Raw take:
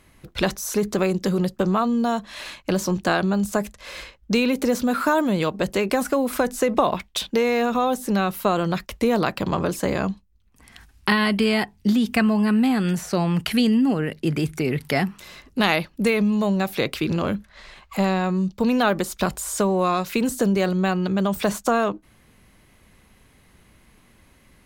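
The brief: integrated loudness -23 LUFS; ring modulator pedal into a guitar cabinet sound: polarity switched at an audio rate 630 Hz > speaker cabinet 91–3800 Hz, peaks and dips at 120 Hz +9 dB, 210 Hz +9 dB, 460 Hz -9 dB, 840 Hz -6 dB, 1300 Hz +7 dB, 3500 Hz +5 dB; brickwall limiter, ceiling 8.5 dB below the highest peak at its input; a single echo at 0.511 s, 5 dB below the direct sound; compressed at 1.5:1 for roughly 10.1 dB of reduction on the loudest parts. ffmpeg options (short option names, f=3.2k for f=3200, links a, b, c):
-af "acompressor=threshold=-45dB:ratio=1.5,alimiter=limit=-22dB:level=0:latency=1,aecho=1:1:511:0.562,aeval=exprs='val(0)*sgn(sin(2*PI*630*n/s))':c=same,highpass=91,equalizer=f=120:t=q:w=4:g=9,equalizer=f=210:t=q:w=4:g=9,equalizer=f=460:t=q:w=4:g=-9,equalizer=f=840:t=q:w=4:g=-6,equalizer=f=1.3k:t=q:w=4:g=7,equalizer=f=3.5k:t=q:w=4:g=5,lowpass=f=3.8k:w=0.5412,lowpass=f=3.8k:w=1.3066,volume=8.5dB"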